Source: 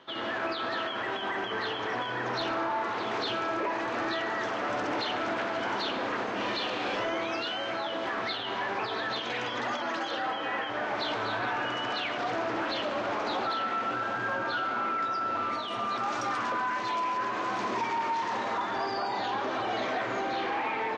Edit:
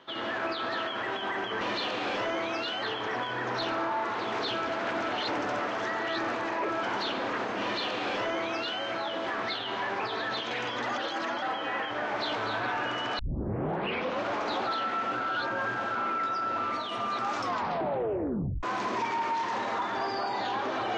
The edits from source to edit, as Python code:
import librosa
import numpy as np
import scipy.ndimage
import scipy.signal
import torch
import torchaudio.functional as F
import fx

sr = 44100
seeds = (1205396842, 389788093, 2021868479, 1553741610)

y = fx.edit(x, sr, fx.reverse_span(start_s=3.46, length_s=2.16),
    fx.duplicate(start_s=6.4, length_s=1.21, to_s=1.61),
    fx.reverse_span(start_s=9.77, length_s=0.44),
    fx.tape_start(start_s=11.98, length_s=1.03),
    fx.reverse_span(start_s=13.99, length_s=0.75),
    fx.tape_stop(start_s=16.15, length_s=1.27), tone=tone)